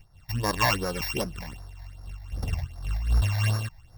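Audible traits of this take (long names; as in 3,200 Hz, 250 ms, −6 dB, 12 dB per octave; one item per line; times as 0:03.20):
a buzz of ramps at a fixed pitch in blocks of 16 samples
phaser sweep stages 8, 2.6 Hz, lowest notch 370–2,900 Hz
amplitude modulation by smooth noise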